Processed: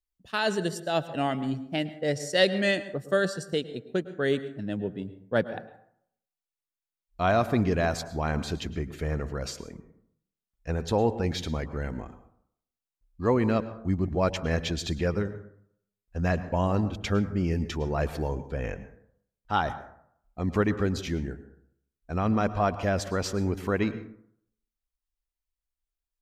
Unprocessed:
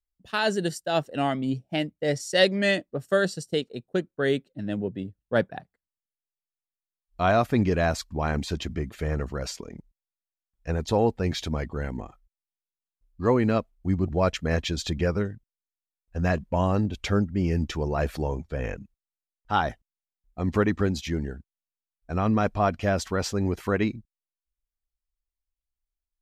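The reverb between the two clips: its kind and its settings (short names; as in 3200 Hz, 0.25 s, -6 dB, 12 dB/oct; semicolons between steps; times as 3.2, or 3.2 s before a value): plate-style reverb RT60 0.67 s, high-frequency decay 0.45×, pre-delay 95 ms, DRR 13.5 dB; gain -2 dB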